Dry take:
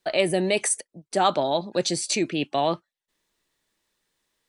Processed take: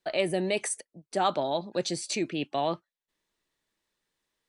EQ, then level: treble shelf 5.9 kHz -4.5 dB; -5.0 dB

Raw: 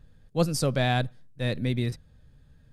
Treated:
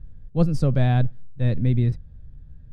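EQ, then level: RIAA curve playback; -3.0 dB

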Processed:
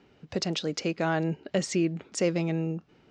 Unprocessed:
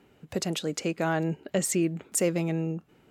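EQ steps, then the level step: four-pole ladder low-pass 6.4 kHz, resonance 45%; distance through air 60 m; +9.0 dB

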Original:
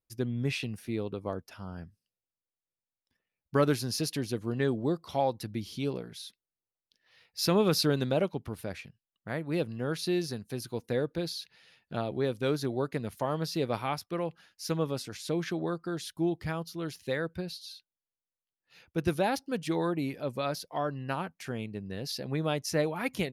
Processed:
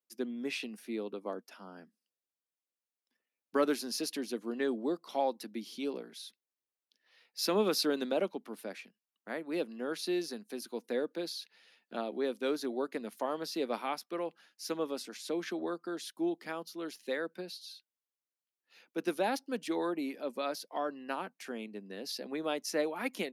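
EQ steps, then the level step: steep high-pass 210 Hz 48 dB/octave; -3.0 dB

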